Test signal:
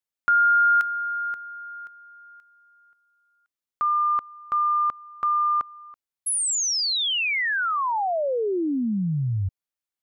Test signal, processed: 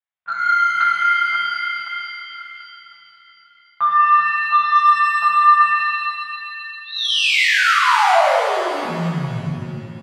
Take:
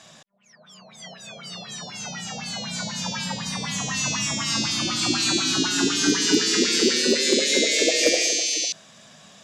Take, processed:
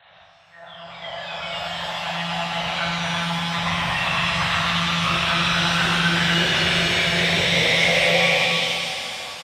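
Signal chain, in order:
double-tracking delay 18 ms −13 dB
multi-voice chorus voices 2, 0.68 Hz, delay 21 ms, depth 1.8 ms
one-pitch LPC vocoder at 8 kHz 170 Hz
drawn EQ curve 160 Hz 0 dB, 280 Hz −25 dB, 650 Hz +5 dB
in parallel at −1.5 dB: downward compressor, threshold −36 dBFS
on the sum: high-shelf EQ 2,500 Hz −6 dB
on a send: flutter between parallel walls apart 7.1 metres, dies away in 0.4 s
on the sum: soft clipping −12.5 dBFS
high-pass filter 120 Hz 12 dB per octave
automatic gain control gain up to 9 dB
reverb with rising layers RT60 2.6 s, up +7 semitones, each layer −8 dB, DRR −3 dB
level −6 dB

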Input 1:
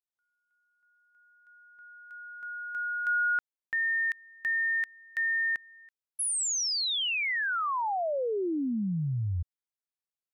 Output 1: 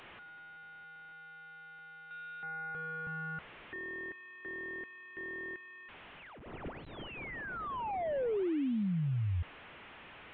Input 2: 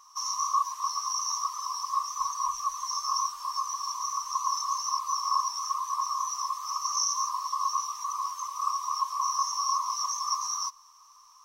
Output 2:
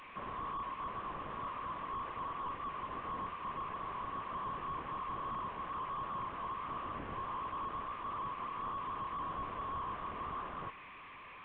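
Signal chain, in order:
linear delta modulator 16 kbit/s, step −43 dBFS
level −2.5 dB

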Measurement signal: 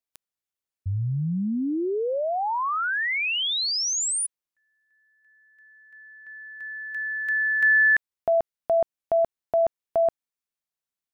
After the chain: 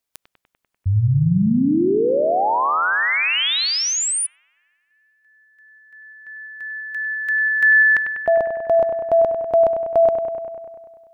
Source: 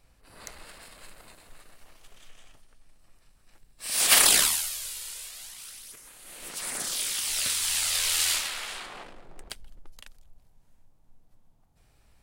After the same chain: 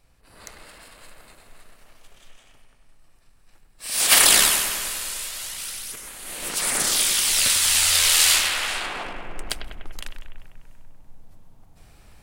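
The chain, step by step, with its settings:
bucket-brigade delay 98 ms, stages 2,048, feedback 70%, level −7.5 dB
speech leveller within 5 dB 2 s
level +6 dB

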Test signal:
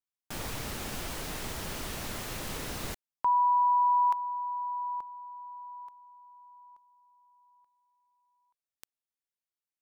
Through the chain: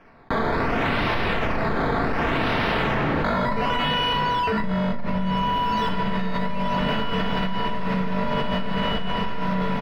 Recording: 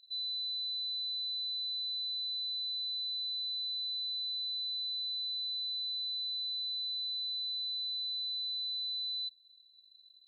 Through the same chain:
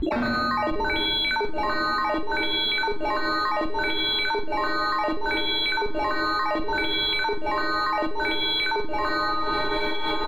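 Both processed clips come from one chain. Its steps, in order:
reverb reduction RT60 1 s
in parallel at −8 dB: hard clipping −35.5 dBFS
on the sum: sample-and-hold swept by an LFO 11×, swing 100% 0.68 Hz
wrap-around overflow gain 33 dB
high-frequency loss of the air 350 metres
double-tracking delay 38 ms −10 dB
on a send: feedback delay with all-pass diffusion 1,434 ms, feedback 50%, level −15 dB
on the sum: rectangular room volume 1,300 cubic metres, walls mixed, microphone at 1.6 metres
envelope flattener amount 100%

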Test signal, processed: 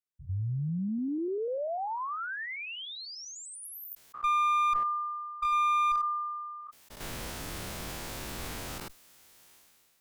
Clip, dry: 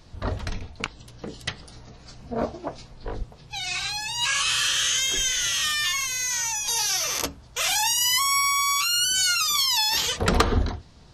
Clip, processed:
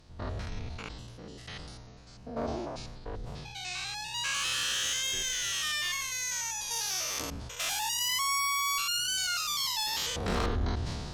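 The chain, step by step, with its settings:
spectrum averaged block by block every 100 ms
asymmetric clip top −22.5 dBFS
level that may fall only so fast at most 25 dB per second
level −5.5 dB

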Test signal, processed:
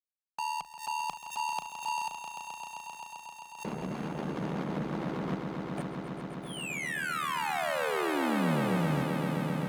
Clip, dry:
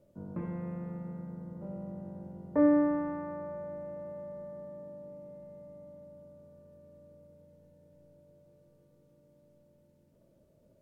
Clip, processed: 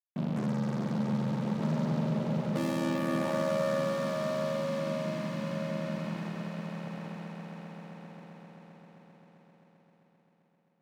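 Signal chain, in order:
each half-wave held at its own peak
gate on every frequency bin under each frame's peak −20 dB strong
low-pass filter 1,100 Hz 12 dB per octave
fuzz pedal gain 43 dB, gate −51 dBFS
reversed playback
downward compressor 6 to 1, threshold −24 dBFS
reversed playback
ring modulation 38 Hz
high-pass filter 56 Hz
low shelf with overshoot 120 Hz −10.5 dB, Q 3
mains-hum notches 50/100 Hz
on a send: echo that builds up and dies away 131 ms, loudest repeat 5, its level −9 dB
on the sum: background raised ahead of every attack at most 140 dB per second
level −7.5 dB

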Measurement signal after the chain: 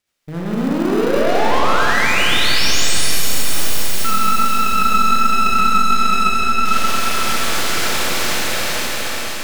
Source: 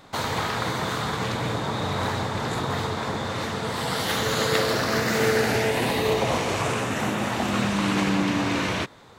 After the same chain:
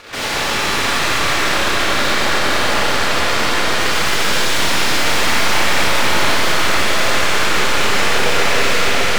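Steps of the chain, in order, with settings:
full-wave rectification
low-shelf EQ 220 Hz −11.5 dB
rotating-speaker cabinet horn 7.5 Hz
feedback delay with all-pass diffusion 464 ms, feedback 47%, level −4.5 dB
mid-hump overdrive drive 31 dB, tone 4,300 Hz, clips at −12.5 dBFS
four-comb reverb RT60 3 s, combs from 27 ms, DRR −5 dB
in parallel at −11.5 dB: sample-rate reduction 1,100 Hz, jitter 0%
on the sum: level −3 dB

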